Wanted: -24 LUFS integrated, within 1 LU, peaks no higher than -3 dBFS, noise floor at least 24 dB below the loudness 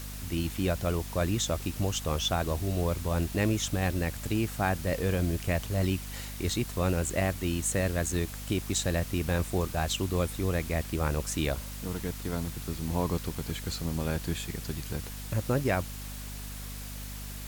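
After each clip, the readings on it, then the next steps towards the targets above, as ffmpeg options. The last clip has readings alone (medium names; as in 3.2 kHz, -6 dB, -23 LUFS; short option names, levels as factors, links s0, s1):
hum 50 Hz; highest harmonic 250 Hz; hum level -39 dBFS; noise floor -40 dBFS; noise floor target -55 dBFS; loudness -31.0 LUFS; peak level -12.5 dBFS; loudness target -24.0 LUFS
-> -af "bandreject=f=50:t=h:w=6,bandreject=f=100:t=h:w=6,bandreject=f=150:t=h:w=6,bandreject=f=200:t=h:w=6,bandreject=f=250:t=h:w=6"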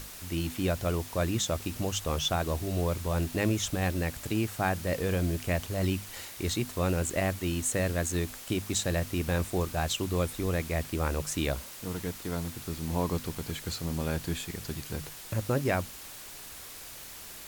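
hum not found; noise floor -45 dBFS; noise floor target -55 dBFS
-> -af "afftdn=nr=10:nf=-45"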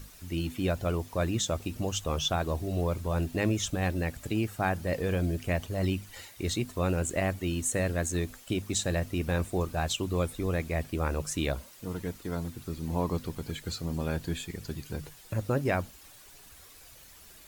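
noise floor -53 dBFS; noise floor target -56 dBFS
-> -af "afftdn=nr=6:nf=-53"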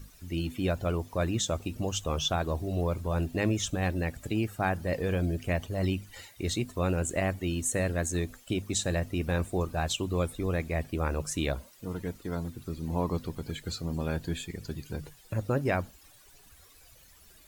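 noise floor -57 dBFS; loudness -31.5 LUFS; peak level -13.5 dBFS; loudness target -24.0 LUFS
-> -af "volume=2.37"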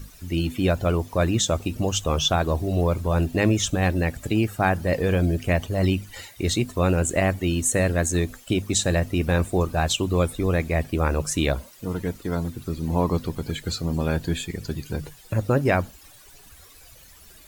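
loudness -24.0 LUFS; peak level -6.0 dBFS; noise floor -49 dBFS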